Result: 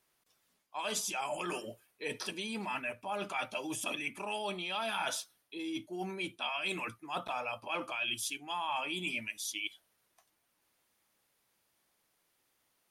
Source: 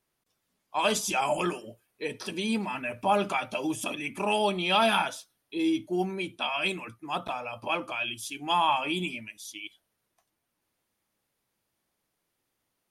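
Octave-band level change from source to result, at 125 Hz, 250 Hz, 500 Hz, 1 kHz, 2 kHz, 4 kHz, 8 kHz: −10.5, −11.0, −10.0, −9.5, −5.5, −6.0, −2.5 decibels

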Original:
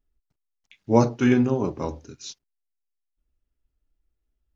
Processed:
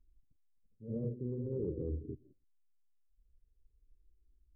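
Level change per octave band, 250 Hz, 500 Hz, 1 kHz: −19.0 dB, −15.5 dB, below −40 dB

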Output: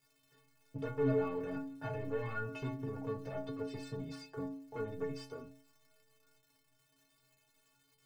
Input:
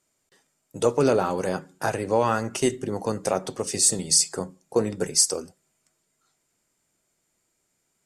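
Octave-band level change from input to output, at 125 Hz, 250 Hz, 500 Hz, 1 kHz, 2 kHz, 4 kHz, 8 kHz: −8.0 dB, −11.0 dB, −13.5 dB, −18.0 dB, −12.0 dB, −27.5 dB, below −40 dB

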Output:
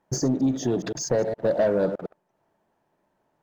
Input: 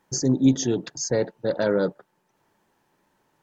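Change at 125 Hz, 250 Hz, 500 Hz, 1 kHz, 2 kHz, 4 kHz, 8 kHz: −2.5 dB, −3.0 dB, +1.5 dB, +2.5 dB, −3.0 dB, −4.0 dB, can't be measured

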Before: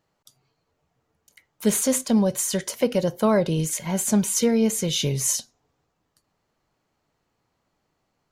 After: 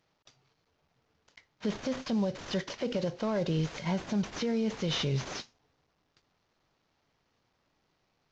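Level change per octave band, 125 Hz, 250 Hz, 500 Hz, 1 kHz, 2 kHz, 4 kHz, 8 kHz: −6.0, −9.0, −10.0, −8.5, −5.0, −6.5, −23.0 decibels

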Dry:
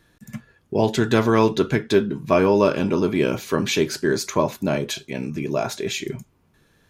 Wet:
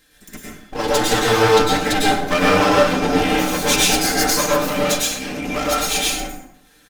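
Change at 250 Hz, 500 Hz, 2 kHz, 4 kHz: +0.5, +1.5, +8.5, +10.5 decibels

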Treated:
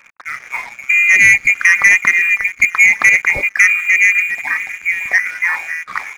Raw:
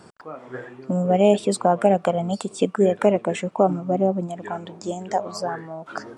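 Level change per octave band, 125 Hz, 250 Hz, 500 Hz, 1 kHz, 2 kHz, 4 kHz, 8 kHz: below −10 dB, below −15 dB, −19.0 dB, −3.5 dB, +30.0 dB, can't be measured, +13.5 dB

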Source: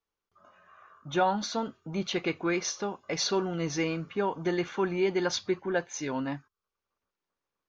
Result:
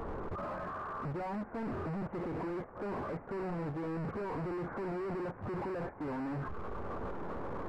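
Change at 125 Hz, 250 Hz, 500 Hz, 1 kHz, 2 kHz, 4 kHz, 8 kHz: −1.5 dB, −6.0 dB, −8.0 dB, −6.0 dB, −10.5 dB, −26.0 dB, can't be measured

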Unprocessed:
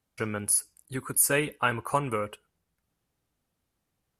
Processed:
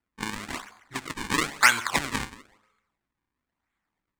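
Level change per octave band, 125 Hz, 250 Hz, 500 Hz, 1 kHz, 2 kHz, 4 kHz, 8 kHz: −5.0, 0.0, −8.5, +2.5, +7.5, +10.0, −5.5 decibels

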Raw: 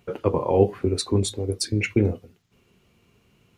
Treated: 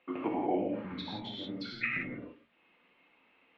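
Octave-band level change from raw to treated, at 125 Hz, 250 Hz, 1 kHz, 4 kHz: −22.5, −10.0, −6.5, −10.0 decibels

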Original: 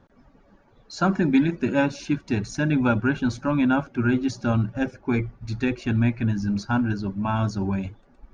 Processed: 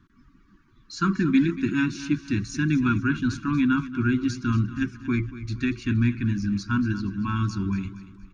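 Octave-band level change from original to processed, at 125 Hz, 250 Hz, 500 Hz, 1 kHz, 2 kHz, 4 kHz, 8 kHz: −0.5 dB, −0.5 dB, −8.5 dB, −4.0 dB, −0.5 dB, 0.0 dB, can't be measured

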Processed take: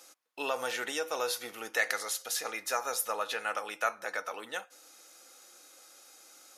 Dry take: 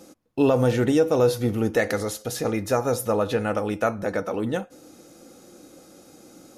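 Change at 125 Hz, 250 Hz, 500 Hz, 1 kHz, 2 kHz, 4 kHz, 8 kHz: below −35 dB, −25.5 dB, −15.0 dB, −5.0 dB, −1.0 dB, 0.0 dB, 0.0 dB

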